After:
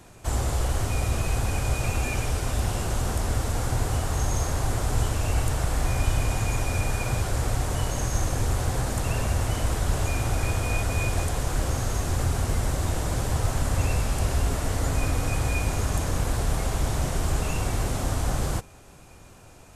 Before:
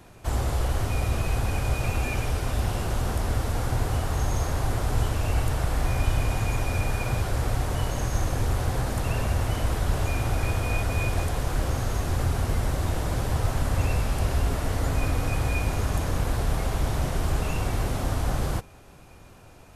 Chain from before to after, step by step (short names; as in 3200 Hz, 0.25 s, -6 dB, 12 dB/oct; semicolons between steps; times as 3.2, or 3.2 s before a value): bell 7600 Hz +7 dB 0.87 oct